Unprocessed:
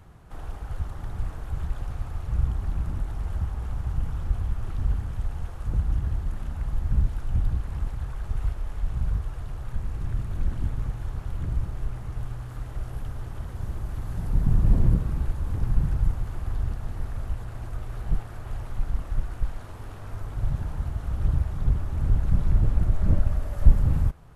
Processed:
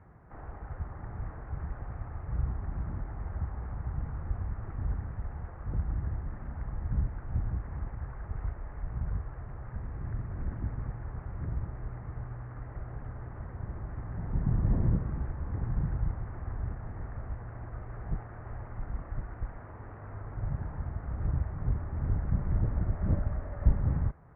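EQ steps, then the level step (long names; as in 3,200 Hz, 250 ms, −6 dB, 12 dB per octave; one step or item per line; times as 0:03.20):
high-pass filter 71 Hz 6 dB per octave
elliptic low-pass filter 2,000 Hz, stop band 80 dB
high-frequency loss of the air 98 metres
−2.0 dB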